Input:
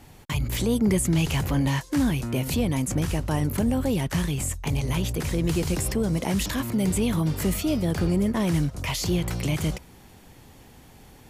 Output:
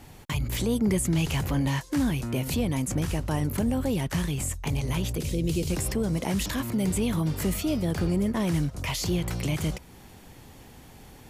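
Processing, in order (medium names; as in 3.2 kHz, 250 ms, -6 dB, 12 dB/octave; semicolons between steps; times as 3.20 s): 5.18–5.70 s: high-order bell 1.2 kHz -13 dB; in parallel at -3 dB: compression, threshold -36 dBFS, peak gain reduction 17 dB; on the sum: trim -3.5 dB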